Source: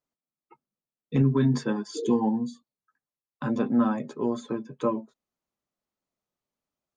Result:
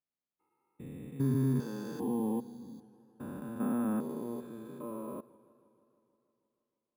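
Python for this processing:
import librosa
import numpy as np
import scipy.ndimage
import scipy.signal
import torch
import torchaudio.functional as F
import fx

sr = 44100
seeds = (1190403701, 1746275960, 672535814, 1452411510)

y = fx.spec_steps(x, sr, hold_ms=400)
y = np.repeat(scipy.signal.resample_poly(y, 1, 4), 4)[:len(y)]
y = fx.echo_warbled(y, sr, ms=158, feedback_pct=71, rate_hz=2.8, cents=106, wet_db=-21.0)
y = y * 10.0 ** (-5.5 / 20.0)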